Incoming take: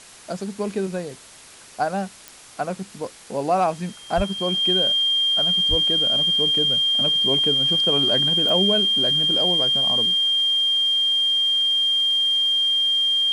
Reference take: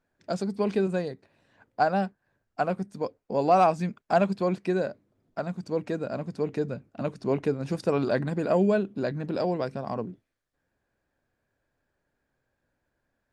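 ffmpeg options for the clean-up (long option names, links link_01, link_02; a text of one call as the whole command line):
ffmpeg -i in.wav -filter_complex "[0:a]adeclick=threshold=4,bandreject=frequency=3200:width=30,asplit=3[link_01][link_02][link_03];[link_01]afade=type=out:start_time=4.16:duration=0.02[link_04];[link_02]highpass=frequency=140:width=0.5412,highpass=frequency=140:width=1.3066,afade=type=in:start_time=4.16:duration=0.02,afade=type=out:start_time=4.28:duration=0.02[link_05];[link_03]afade=type=in:start_time=4.28:duration=0.02[link_06];[link_04][link_05][link_06]amix=inputs=3:normalize=0,asplit=3[link_07][link_08][link_09];[link_07]afade=type=out:start_time=5.69:duration=0.02[link_10];[link_08]highpass=frequency=140:width=0.5412,highpass=frequency=140:width=1.3066,afade=type=in:start_time=5.69:duration=0.02,afade=type=out:start_time=5.81:duration=0.02[link_11];[link_09]afade=type=in:start_time=5.81:duration=0.02[link_12];[link_10][link_11][link_12]amix=inputs=3:normalize=0,afwtdn=0.0071" out.wav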